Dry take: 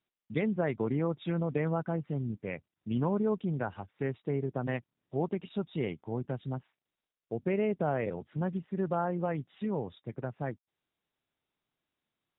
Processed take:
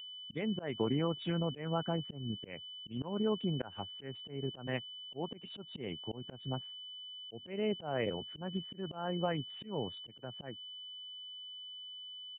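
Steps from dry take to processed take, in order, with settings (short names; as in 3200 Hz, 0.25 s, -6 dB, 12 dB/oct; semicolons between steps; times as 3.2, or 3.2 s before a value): whine 3000 Hz -42 dBFS; harmonic-percussive split harmonic -4 dB; auto swell 0.2 s; downsampling 8000 Hz; gain +1 dB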